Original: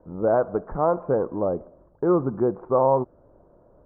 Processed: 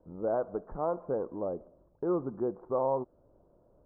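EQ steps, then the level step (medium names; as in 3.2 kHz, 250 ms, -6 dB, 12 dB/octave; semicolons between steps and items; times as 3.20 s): low-pass 1 kHz 6 dB/octave; dynamic bell 110 Hz, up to -6 dB, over -39 dBFS, Q 0.82; -8.0 dB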